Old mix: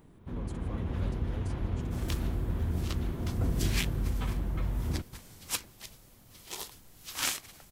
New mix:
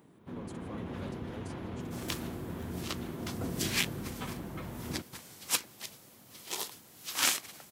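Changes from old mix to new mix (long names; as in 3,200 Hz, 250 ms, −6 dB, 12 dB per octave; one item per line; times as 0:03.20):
second sound +3.5 dB
master: add high-pass filter 170 Hz 12 dB per octave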